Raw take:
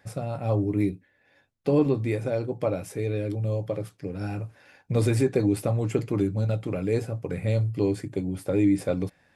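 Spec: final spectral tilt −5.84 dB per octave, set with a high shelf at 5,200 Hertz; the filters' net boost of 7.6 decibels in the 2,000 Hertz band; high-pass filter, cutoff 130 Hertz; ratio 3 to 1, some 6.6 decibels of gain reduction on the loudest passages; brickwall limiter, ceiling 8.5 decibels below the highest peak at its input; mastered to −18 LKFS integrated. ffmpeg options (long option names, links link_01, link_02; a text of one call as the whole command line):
ffmpeg -i in.wav -af "highpass=130,equalizer=frequency=2000:width_type=o:gain=8.5,highshelf=frequency=5200:gain=5.5,acompressor=threshold=-26dB:ratio=3,volume=16dB,alimiter=limit=-7dB:level=0:latency=1" out.wav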